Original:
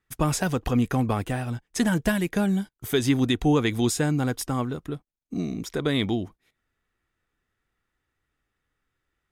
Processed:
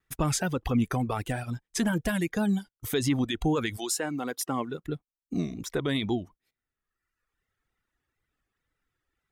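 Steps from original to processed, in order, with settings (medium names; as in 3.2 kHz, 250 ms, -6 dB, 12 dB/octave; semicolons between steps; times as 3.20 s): peak limiter -16.5 dBFS, peak gain reduction 5 dB; 3.76–4.84 s: high-pass 470 Hz -> 160 Hz 12 dB/octave; reverb removal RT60 1.2 s; wow and flutter 71 cents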